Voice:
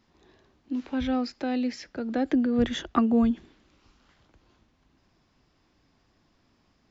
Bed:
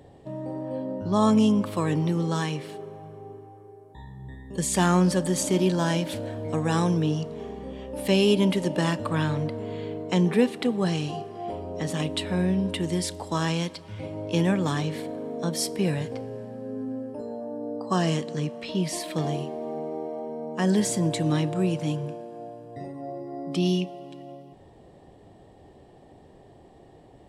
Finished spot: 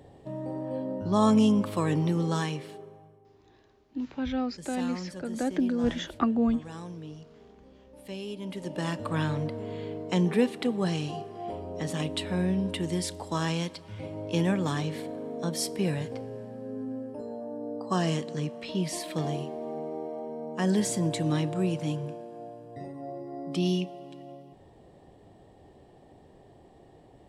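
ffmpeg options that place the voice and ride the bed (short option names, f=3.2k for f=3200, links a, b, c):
-filter_complex "[0:a]adelay=3250,volume=-3dB[a];[1:a]volume=13dB,afade=t=out:st=2.35:d=0.86:silence=0.158489,afade=t=in:st=8.41:d=0.77:silence=0.188365[b];[a][b]amix=inputs=2:normalize=0"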